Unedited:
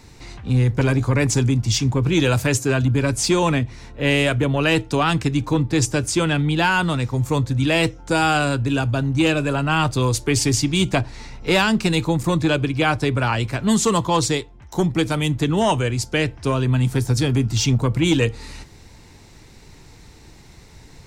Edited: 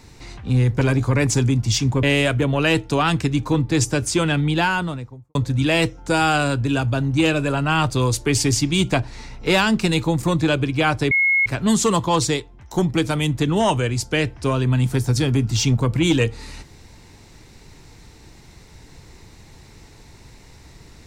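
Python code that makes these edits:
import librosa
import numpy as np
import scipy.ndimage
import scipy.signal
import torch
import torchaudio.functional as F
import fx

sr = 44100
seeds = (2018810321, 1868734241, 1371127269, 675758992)

y = fx.studio_fade_out(x, sr, start_s=6.53, length_s=0.83)
y = fx.edit(y, sr, fx.cut(start_s=2.03, length_s=2.01),
    fx.bleep(start_s=13.12, length_s=0.35, hz=2170.0, db=-14.0), tone=tone)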